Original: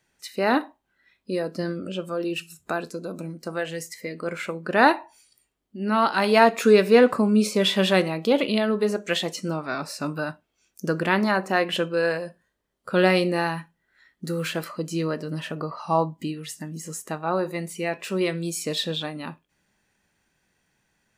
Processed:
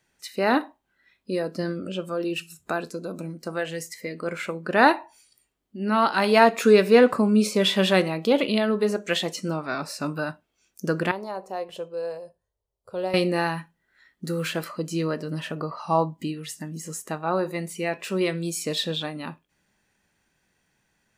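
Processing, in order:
0:11.11–0:13.14: drawn EQ curve 100 Hz 0 dB, 170 Hz −16 dB, 300 Hz −20 dB, 420 Hz −6 dB, 920 Hz −8 dB, 1,600 Hz −23 dB, 5,500 Hz −11 dB

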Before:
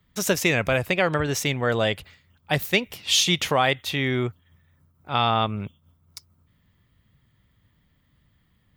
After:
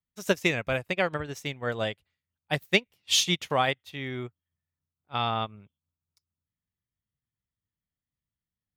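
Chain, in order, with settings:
expander for the loud parts 2.5 to 1, over −36 dBFS

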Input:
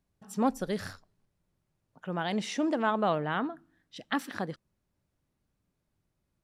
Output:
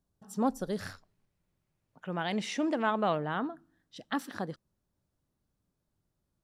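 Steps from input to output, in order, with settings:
parametric band 2,300 Hz −10 dB 0.77 octaves, from 0:00.81 +3 dB, from 0:03.17 −6 dB
level −1.5 dB

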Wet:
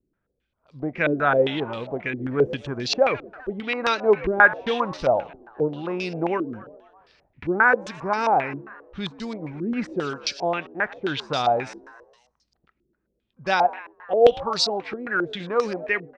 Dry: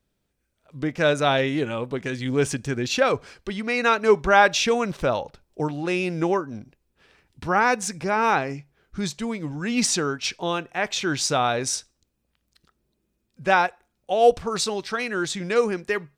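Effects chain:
echo with shifted repeats 127 ms, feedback 59%, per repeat +73 Hz, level −17.5 dB
low-pass on a step sequencer 7.5 Hz 340–4,800 Hz
level −4 dB

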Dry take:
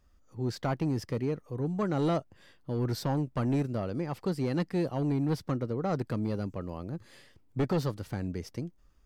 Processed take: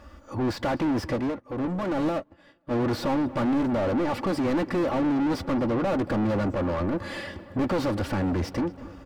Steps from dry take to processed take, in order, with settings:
parametric band 74 Hz +10.5 dB 1.4 octaves
notch filter 6,400 Hz, Q 16
comb filter 3.5 ms, depth 70%
mid-hump overdrive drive 35 dB, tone 1,000 Hz, clips at −18 dBFS
feedback echo with a low-pass in the loop 231 ms, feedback 74%, low-pass 3,300 Hz, level −18 dB
0:01.16–0:02.71: expander for the loud parts 2.5 to 1, over −41 dBFS

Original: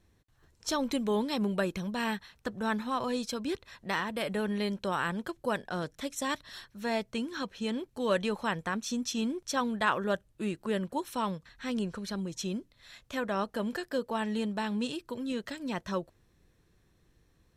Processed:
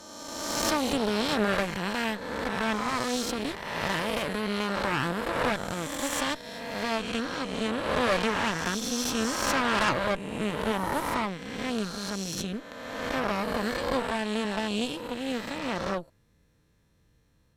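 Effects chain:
peak hold with a rise ahead of every peak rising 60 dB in 1.97 s
notch comb filter 370 Hz
harmonic generator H 8 −14 dB, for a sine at −9.5 dBFS
level −1.5 dB

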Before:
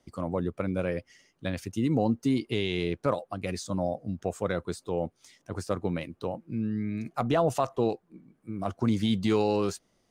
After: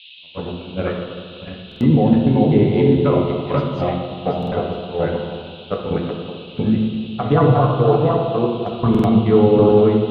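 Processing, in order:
feedback delay that plays each chunk backwards 369 ms, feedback 53%, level −2 dB
noise gate −25 dBFS, range −41 dB
treble cut that deepens with the level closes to 1,300 Hz, closed at −22 dBFS
0:07.25–0:08.06: comb filter 6.8 ms, depth 89%
brickwall limiter −22 dBFS, peak gain reduction 13 dB
automatic gain control gain up to 12.5 dB
noise in a band 2,600–4,000 Hz −40 dBFS
high-frequency loss of the air 250 metres
convolution reverb RT60 1.9 s, pre-delay 3 ms, DRR 0 dB
buffer that repeats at 0:01.67/0:04.38/0:08.90, samples 2,048, times 2
level +1 dB

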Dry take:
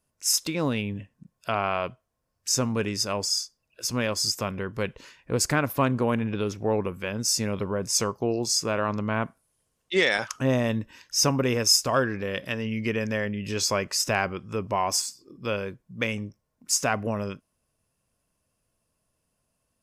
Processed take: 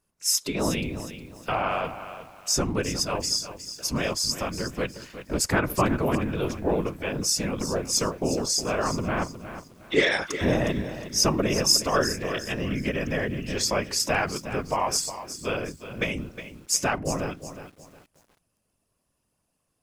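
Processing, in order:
random phases in short frames
feedback echo at a low word length 362 ms, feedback 35%, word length 8 bits, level −11.5 dB

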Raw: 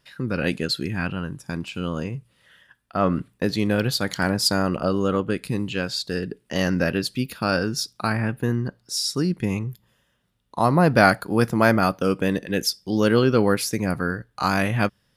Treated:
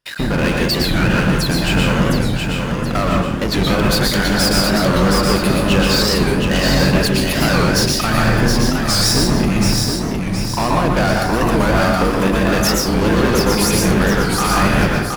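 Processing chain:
sub-octave generator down 2 octaves, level +3 dB
low-shelf EQ 140 Hz −9.5 dB
downward compressor, threshold −27 dBFS, peak gain reduction 16 dB
leveller curve on the samples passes 5
on a send: repeating echo 720 ms, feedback 44%, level −4.5 dB
on the sum: dense smooth reverb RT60 0.63 s, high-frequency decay 0.6×, pre-delay 105 ms, DRR −1 dB
wow of a warped record 45 rpm, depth 160 cents
level −1 dB

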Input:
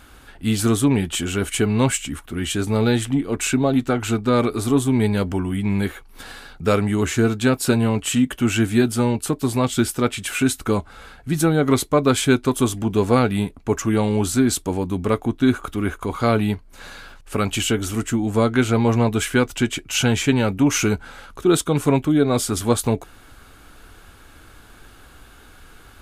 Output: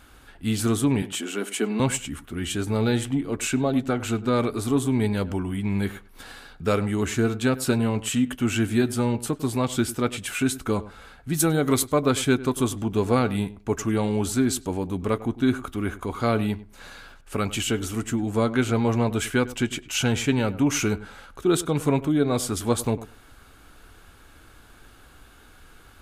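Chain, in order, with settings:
0:01.02–0:01.80: elliptic high-pass filter 210 Hz
0:11.33–0:12.04: high-shelf EQ 4,600 Hz → 8,700 Hz +10.5 dB
feedback echo with a low-pass in the loop 100 ms, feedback 16%, low-pass 1,700 Hz, level −16 dB
level −4.5 dB

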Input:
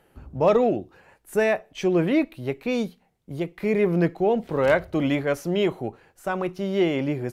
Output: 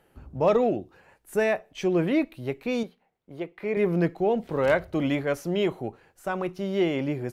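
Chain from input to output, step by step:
0:02.83–0:03.77: bass and treble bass −11 dB, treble −12 dB
level −2.5 dB

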